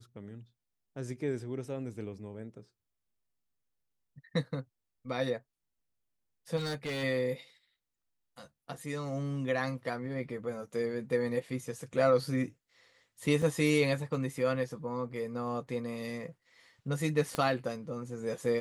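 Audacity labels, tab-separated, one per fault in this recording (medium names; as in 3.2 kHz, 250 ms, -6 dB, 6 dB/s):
6.560000	7.040000	clipped -32 dBFS
13.420000	13.420000	dropout 3.5 ms
17.350000	17.350000	pop -18 dBFS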